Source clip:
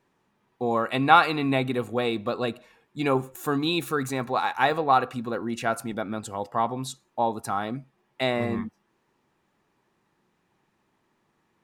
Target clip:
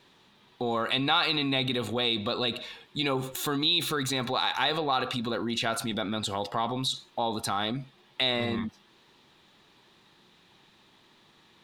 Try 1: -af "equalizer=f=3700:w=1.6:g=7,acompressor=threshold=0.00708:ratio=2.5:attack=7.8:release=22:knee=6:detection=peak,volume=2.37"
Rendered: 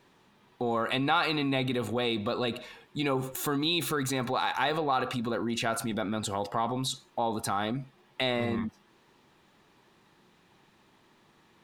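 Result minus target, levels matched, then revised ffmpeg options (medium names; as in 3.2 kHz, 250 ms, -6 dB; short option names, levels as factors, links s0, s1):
4 kHz band -4.5 dB
-af "equalizer=f=3700:w=1.6:g=17,acompressor=threshold=0.00708:ratio=2.5:attack=7.8:release=22:knee=6:detection=peak,volume=2.37"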